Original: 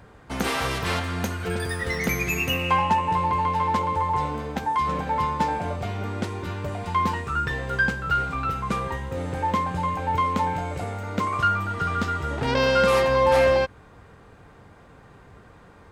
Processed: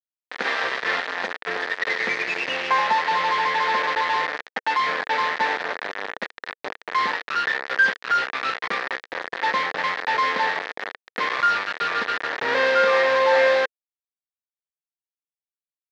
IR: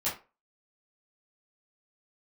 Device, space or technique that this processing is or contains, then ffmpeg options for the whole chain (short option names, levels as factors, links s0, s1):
hand-held game console: -af "acrusher=bits=3:mix=0:aa=0.000001,highpass=450,equalizer=f=470:t=q:w=4:g=4,equalizer=f=1800:t=q:w=4:g=10,equalizer=f=2900:t=q:w=4:g=-4,lowpass=f=4200:w=0.5412,lowpass=f=4200:w=1.3066"